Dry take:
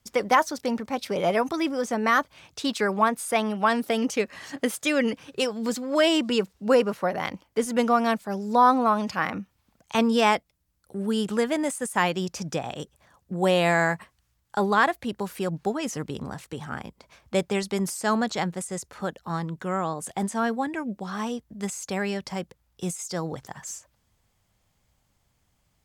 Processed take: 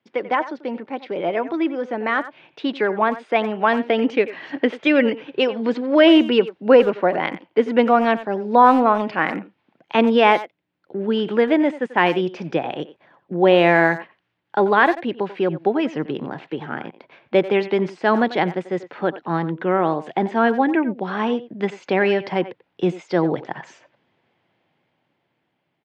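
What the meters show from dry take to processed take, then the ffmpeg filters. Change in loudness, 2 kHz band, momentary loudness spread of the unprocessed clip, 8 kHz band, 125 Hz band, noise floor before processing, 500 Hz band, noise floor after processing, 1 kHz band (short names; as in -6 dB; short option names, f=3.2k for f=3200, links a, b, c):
+6.0 dB, +6.0 dB, 14 LU, under -20 dB, +3.0 dB, -71 dBFS, +7.5 dB, -72 dBFS, +5.0 dB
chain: -filter_complex "[0:a]dynaudnorm=f=780:g=7:m=13dB,highpass=f=160:w=0.5412,highpass=f=160:w=1.3066,equalizer=f=200:t=q:w=4:g=-6,equalizer=f=340:t=q:w=4:g=6,equalizer=f=1.2k:t=q:w=4:g=-6,lowpass=f=3.1k:w=0.5412,lowpass=f=3.1k:w=1.3066,asplit=2[a][b];[b]adelay=90,highpass=300,lowpass=3.4k,asoftclip=type=hard:threshold=-9.5dB,volume=-14dB[c];[a][c]amix=inputs=2:normalize=0"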